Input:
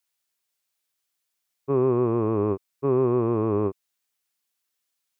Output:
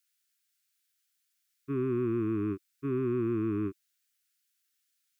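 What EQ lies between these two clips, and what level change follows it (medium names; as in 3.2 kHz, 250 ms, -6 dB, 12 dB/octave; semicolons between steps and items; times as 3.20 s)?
elliptic band-stop 330–1400 Hz, stop band 60 dB; bass shelf 240 Hz -10.5 dB; +1.5 dB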